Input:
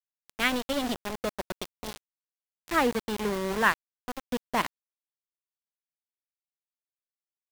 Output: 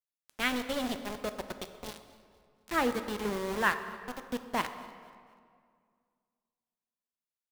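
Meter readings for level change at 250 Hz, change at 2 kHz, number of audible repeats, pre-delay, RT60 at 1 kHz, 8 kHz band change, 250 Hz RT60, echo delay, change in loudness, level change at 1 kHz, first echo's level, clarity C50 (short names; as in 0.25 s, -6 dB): -3.5 dB, -4.0 dB, 2, 6 ms, 2.1 s, -4.0 dB, 2.3 s, 0.241 s, -4.0 dB, -4.0 dB, -22.0 dB, 10.0 dB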